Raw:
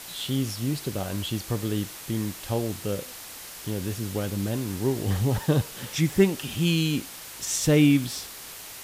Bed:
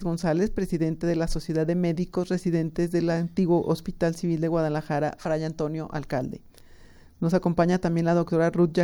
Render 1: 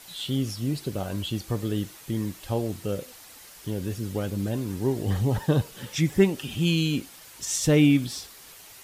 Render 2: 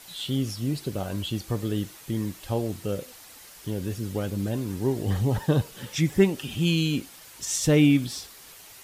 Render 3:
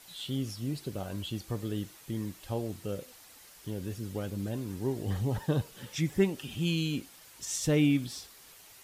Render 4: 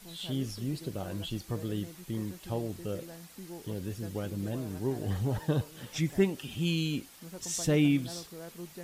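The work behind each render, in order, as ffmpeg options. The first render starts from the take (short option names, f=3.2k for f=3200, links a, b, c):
-af "afftdn=nr=8:nf=-41"
-af anull
-af "volume=-6.5dB"
-filter_complex "[1:a]volume=-23dB[a];[0:a][a]amix=inputs=2:normalize=0"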